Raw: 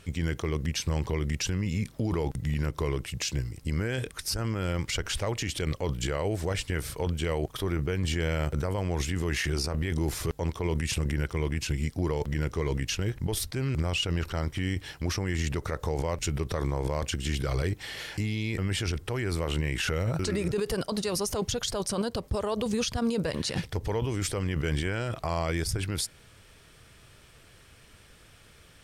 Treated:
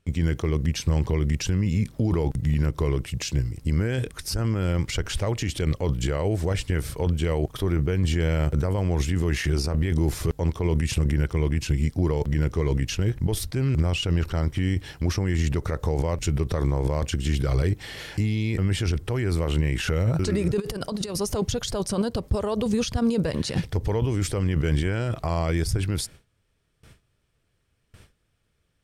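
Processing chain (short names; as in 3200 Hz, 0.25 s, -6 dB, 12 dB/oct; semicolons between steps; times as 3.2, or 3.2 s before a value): 20.6–21.15 negative-ratio compressor -33 dBFS, ratio -0.5; low shelf 460 Hz +7 dB; gate with hold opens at -38 dBFS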